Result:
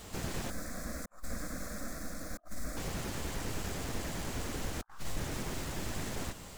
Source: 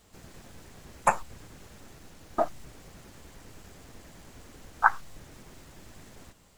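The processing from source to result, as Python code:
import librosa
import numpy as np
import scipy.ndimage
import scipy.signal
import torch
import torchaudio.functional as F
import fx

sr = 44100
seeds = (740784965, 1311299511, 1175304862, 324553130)

y = fx.over_compress(x, sr, threshold_db=-43.0, ratio=-0.5)
y = fx.fixed_phaser(y, sr, hz=590.0, stages=8, at=(0.5, 2.77))
y = F.gain(torch.from_numpy(y), 5.5).numpy()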